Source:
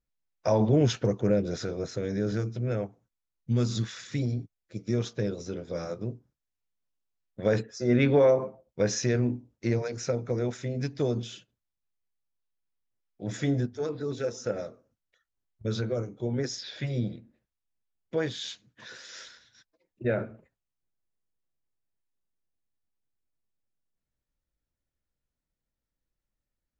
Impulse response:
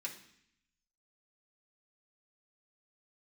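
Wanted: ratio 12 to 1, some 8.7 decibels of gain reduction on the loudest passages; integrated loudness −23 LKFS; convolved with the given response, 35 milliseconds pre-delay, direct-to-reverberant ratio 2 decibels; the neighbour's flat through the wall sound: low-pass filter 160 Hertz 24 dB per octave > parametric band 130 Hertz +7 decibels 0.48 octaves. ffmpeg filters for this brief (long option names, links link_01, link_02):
-filter_complex "[0:a]acompressor=threshold=-26dB:ratio=12,asplit=2[link_01][link_02];[1:a]atrim=start_sample=2205,adelay=35[link_03];[link_02][link_03]afir=irnorm=-1:irlink=0,volume=-1dB[link_04];[link_01][link_04]amix=inputs=2:normalize=0,lowpass=frequency=160:width=0.5412,lowpass=frequency=160:width=1.3066,equalizer=frequency=130:width_type=o:width=0.48:gain=7,volume=11dB"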